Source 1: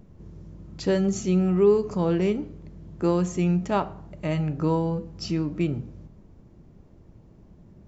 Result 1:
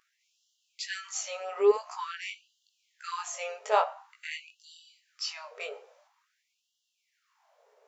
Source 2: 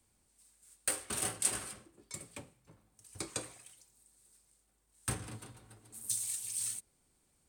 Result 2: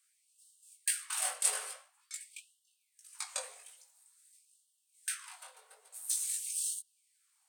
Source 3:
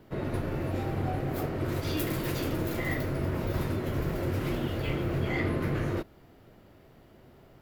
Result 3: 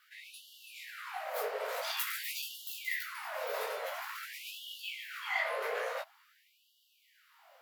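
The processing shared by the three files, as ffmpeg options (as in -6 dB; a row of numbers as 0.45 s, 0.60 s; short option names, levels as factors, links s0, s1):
-af "flanger=delay=16.5:depth=4.7:speed=1,acontrast=26,afftfilt=real='re*gte(b*sr/1024,390*pow(2800/390,0.5+0.5*sin(2*PI*0.48*pts/sr)))':imag='im*gte(b*sr/1024,390*pow(2800/390,0.5+0.5*sin(2*PI*0.48*pts/sr)))':win_size=1024:overlap=0.75"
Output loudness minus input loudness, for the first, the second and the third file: -7.5 LU, +1.5 LU, -6.0 LU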